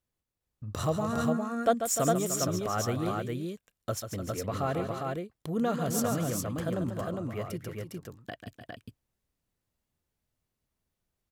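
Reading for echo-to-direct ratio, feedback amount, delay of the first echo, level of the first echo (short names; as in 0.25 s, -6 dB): -1.5 dB, no steady repeat, 0.141 s, -8.5 dB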